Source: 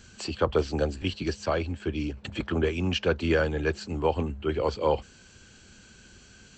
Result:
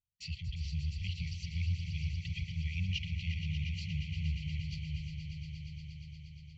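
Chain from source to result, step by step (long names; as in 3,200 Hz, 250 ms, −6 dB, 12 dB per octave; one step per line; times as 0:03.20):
Butterworth low-pass 6,700 Hz 48 dB per octave
noise gate −41 dBFS, range −41 dB
high-shelf EQ 2,200 Hz −10 dB
brickwall limiter −24 dBFS, peak gain reduction 11 dB
linear-phase brick-wall band-stop 180–1,900 Hz
on a send: echo that builds up and dies away 118 ms, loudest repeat 5, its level −11 dB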